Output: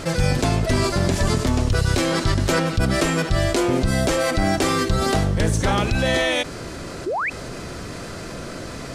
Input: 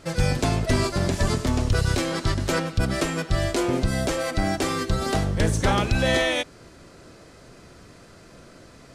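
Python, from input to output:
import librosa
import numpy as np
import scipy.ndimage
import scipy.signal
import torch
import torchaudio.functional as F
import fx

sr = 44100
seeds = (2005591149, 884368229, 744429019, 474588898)

y = fx.rider(x, sr, range_db=10, speed_s=0.5)
y = fx.spec_paint(y, sr, seeds[0], shape='rise', start_s=7.06, length_s=0.24, low_hz=320.0, high_hz=2700.0, level_db=-31.0)
y = fx.env_flatten(y, sr, amount_pct=50)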